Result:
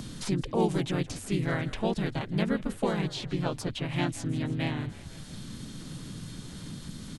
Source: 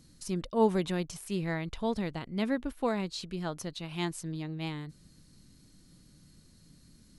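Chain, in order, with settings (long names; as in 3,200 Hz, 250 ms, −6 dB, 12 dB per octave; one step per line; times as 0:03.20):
de-essing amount 70%
echo with shifted repeats 164 ms, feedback 49%, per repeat −50 Hz, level −18.5 dB
pitch-shifted copies added −5 semitones −3 dB, −3 semitones −1 dB
multiband upward and downward compressor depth 70%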